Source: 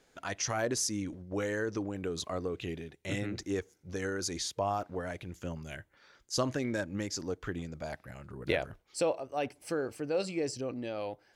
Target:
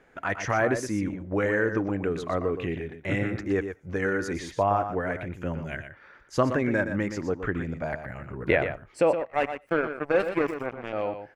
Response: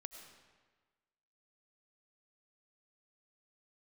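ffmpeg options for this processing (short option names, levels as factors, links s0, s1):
-filter_complex "[0:a]asettb=1/sr,asplit=3[s0][s1][s2];[s0]atrim=end=9.134[s3];[s1]atrim=start=9.13:end=10.93,asetpts=PTS-STARTPTS,afade=t=in:d=0.004:c=qsin,afade=t=out:st=1.796:d=0.004:c=qsin,aeval=exprs='0.0944*(cos(1*acos(clip(val(0)/0.0944,-1,1)))-cos(1*PI/2))+0.015*(cos(7*acos(clip(val(0)/0.0944,-1,1)))-cos(7*PI/2))':c=same[s4];[s2]atrim=start=10.926[s5];[s3][s4]acrossfade=d=0.004:c1=hsin:c2=qsin[s6];[s6][s5]acrossfade=d=0.004:c1=qsin:c2=hsin,highshelf=f=3000:t=q:w=1.5:g=-13.5,aecho=1:1:120:0.355,asplit=2[s7][s8];[1:a]atrim=start_sample=2205,atrim=end_sample=4410[s9];[s8][s9]afir=irnorm=-1:irlink=0,volume=0.75[s10];[s7][s10]amix=inputs=2:normalize=0,volume=1.68"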